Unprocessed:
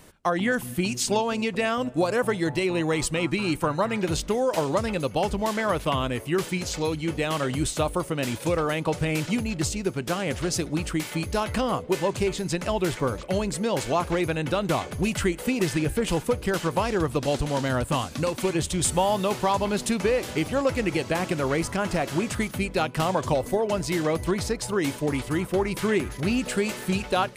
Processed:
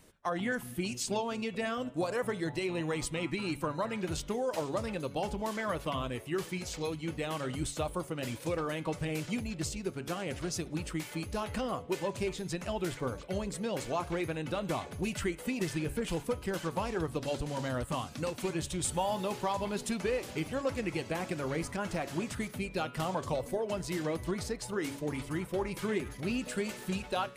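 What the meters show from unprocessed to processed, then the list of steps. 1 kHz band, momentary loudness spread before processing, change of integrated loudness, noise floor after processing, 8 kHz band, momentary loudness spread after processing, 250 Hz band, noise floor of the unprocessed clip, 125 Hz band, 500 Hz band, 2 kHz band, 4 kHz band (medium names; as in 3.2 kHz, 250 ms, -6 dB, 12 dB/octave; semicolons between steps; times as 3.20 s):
-9.0 dB, 3 LU, -9.0 dB, -47 dBFS, -9.0 dB, 3 LU, -9.0 dB, -39 dBFS, -9.0 dB, -9.0 dB, -9.0 dB, -9.0 dB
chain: coarse spectral quantiser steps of 15 dB; de-hum 140.6 Hz, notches 29; trim -8.5 dB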